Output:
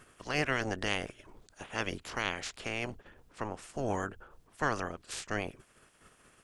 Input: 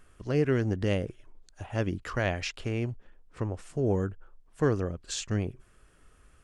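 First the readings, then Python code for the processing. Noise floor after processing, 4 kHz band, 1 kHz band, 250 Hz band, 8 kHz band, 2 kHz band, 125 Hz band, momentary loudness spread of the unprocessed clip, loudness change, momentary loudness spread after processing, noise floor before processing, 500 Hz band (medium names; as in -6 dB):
-65 dBFS, +1.5 dB, +3.5 dB, -8.5 dB, -2.5 dB, +3.0 dB, -12.5 dB, 9 LU, -5.0 dB, 10 LU, -61 dBFS, -7.5 dB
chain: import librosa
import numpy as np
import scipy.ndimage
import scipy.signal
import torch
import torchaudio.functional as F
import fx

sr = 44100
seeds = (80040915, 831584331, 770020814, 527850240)

y = fx.spec_clip(x, sr, under_db=24)
y = y * librosa.db_to_amplitude(-5.5)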